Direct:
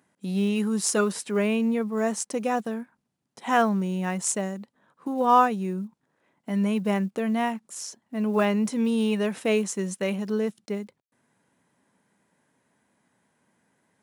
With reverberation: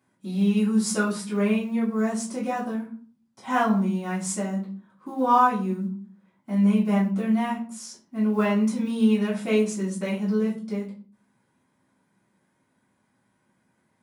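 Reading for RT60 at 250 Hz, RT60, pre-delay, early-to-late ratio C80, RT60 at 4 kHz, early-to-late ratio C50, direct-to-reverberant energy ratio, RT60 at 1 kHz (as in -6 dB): 0.65 s, 0.45 s, 4 ms, 13.5 dB, 0.30 s, 8.0 dB, -9.0 dB, 0.40 s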